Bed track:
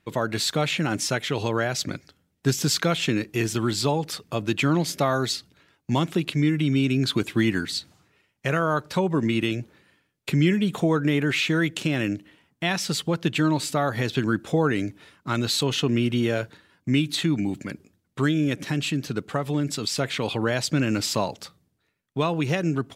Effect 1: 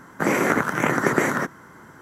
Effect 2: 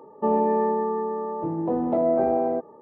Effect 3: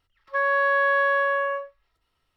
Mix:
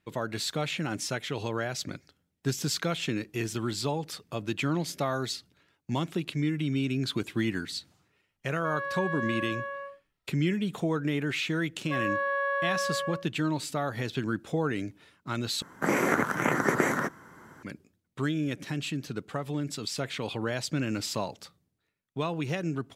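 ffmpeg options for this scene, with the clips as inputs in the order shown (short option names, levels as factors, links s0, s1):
-filter_complex "[3:a]asplit=2[s0][s1];[0:a]volume=0.447[s2];[s1]equalizer=f=4300:t=o:w=2.9:g=-5.5[s3];[s2]asplit=2[s4][s5];[s4]atrim=end=15.624[s6];[1:a]atrim=end=2.01,asetpts=PTS-STARTPTS,volume=0.562[s7];[s5]atrim=start=17.626[s8];[s0]atrim=end=2.36,asetpts=PTS-STARTPTS,volume=0.237,afade=t=in:d=0.004:c=hsin,afade=t=out:st=2.356:d=0.004:c=hsin,adelay=8300[s9];[s3]atrim=end=2.36,asetpts=PTS-STARTPTS,volume=0.501,afade=t=in:d=0.004:c=hsin,afade=t=out:st=2.356:d=0.004:c=hsin,adelay=11570[s10];[s6][s7]acrossfade=d=0.004:c1=hsin:c2=hsin[s11];[s11][s8]acrossfade=d=0.004:c1=hsin:c2=hsin[s12];[s12][s9][s10]amix=inputs=3:normalize=0"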